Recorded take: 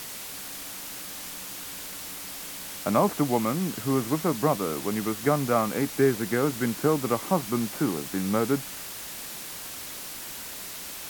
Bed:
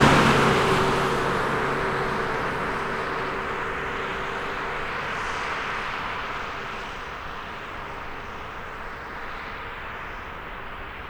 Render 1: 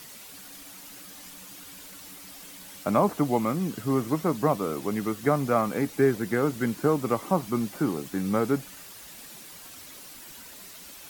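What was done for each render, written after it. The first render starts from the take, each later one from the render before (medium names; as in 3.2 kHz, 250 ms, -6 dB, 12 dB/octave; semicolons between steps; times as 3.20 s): noise reduction 9 dB, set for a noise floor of -39 dBFS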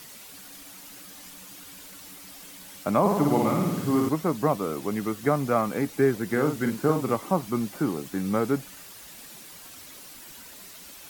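3.00–4.09 s: flutter echo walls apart 9.5 m, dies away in 1.1 s; 6.25–7.16 s: doubling 46 ms -6.5 dB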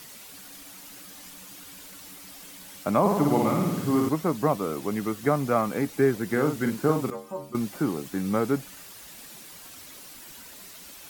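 7.10–7.55 s: inharmonic resonator 69 Hz, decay 0.56 s, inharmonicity 0.008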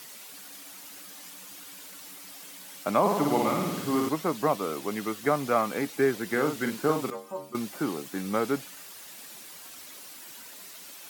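high-pass 330 Hz 6 dB/octave; dynamic bell 3.4 kHz, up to +4 dB, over -46 dBFS, Q 0.89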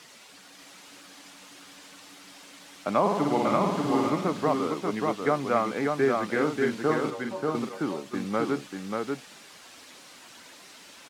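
distance through air 71 m; on a send: delay 587 ms -3.5 dB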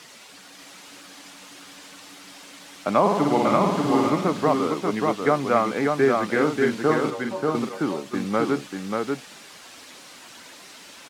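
trim +4.5 dB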